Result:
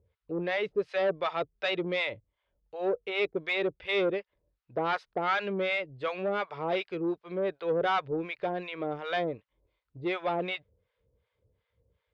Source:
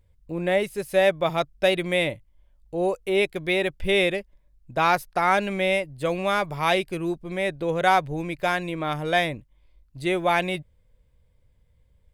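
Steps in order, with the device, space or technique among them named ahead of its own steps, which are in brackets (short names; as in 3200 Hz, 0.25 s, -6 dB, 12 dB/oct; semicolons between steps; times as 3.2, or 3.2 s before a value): guitar amplifier with harmonic tremolo (harmonic tremolo 2.7 Hz, depth 100%, crossover 720 Hz; soft clip -24 dBFS, distortion -11 dB; speaker cabinet 94–4200 Hz, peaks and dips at 150 Hz -8 dB, 240 Hz -5 dB, 440 Hz +9 dB, 1300 Hz +5 dB)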